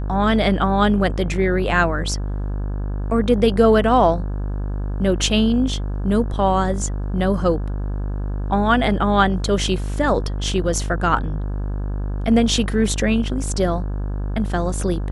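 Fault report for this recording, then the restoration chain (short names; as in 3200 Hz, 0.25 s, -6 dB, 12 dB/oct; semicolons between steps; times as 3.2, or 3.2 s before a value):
buzz 50 Hz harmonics 34 -24 dBFS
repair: de-hum 50 Hz, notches 34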